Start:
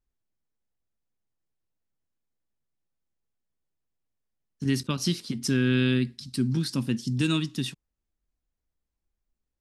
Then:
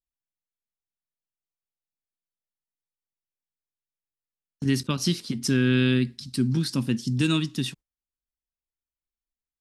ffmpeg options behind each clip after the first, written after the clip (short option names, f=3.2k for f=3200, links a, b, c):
-af "agate=range=-18dB:threshold=-46dB:ratio=16:detection=peak,volume=2dB"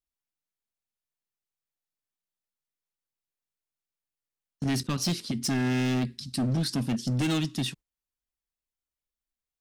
-af "asoftclip=type=hard:threshold=-23dB"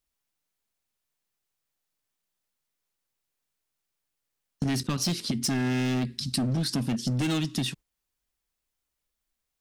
-af "acompressor=threshold=-34dB:ratio=6,volume=8.5dB"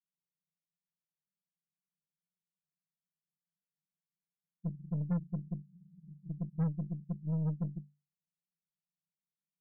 -af "asuperpass=centerf=170:order=20:qfactor=3.2,asoftclip=type=tanh:threshold=-23.5dB,aeval=exprs='0.0596*(cos(1*acos(clip(val(0)/0.0596,-1,1)))-cos(1*PI/2))+0.00422*(cos(5*acos(clip(val(0)/0.0596,-1,1)))-cos(5*PI/2))+0.00335*(cos(8*acos(clip(val(0)/0.0596,-1,1)))-cos(8*PI/2))':c=same"